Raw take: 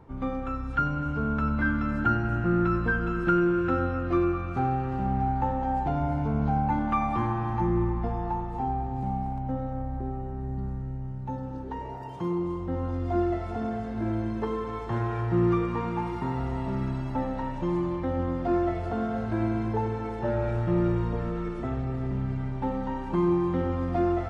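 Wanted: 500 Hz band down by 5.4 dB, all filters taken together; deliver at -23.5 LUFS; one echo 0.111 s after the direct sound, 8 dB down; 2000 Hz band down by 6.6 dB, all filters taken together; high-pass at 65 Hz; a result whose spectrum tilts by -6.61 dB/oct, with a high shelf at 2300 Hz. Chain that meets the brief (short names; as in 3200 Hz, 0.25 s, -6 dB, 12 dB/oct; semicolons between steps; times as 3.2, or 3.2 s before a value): HPF 65 Hz; bell 500 Hz -8.5 dB; bell 2000 Hz -6 dB; high shelf 2300 Hz -7 dB; echo 0.111 s -8 dB; gain +8 dB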